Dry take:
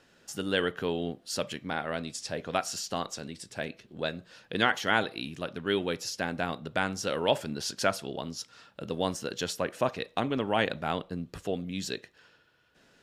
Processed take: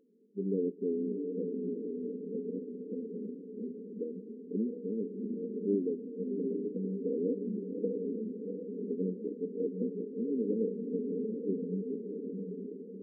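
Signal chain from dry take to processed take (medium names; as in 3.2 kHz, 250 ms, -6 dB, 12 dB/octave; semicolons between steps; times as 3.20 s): echo that smears into a reverb 704 ms, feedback 54%, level -4 dB; FFT band-pass 180–550 Hz; formant shift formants -2 st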